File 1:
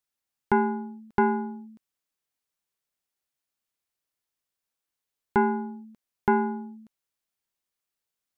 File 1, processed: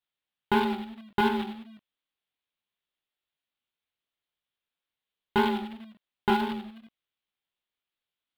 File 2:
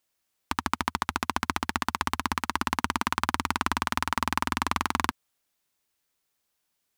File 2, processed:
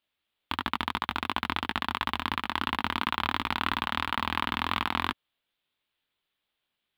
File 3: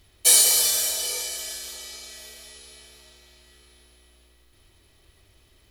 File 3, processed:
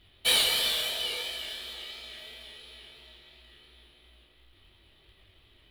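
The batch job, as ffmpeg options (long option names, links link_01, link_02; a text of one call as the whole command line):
ffmpeg -i in.wav -af "flanger=delay=17.5:depth=6.8:speed=2.9,acrusher=bits=2:mode=log:mix=0:aa=0.000001,highshelf=frequency=4600:width_type=q:width=3:gain=-10.5" out.wav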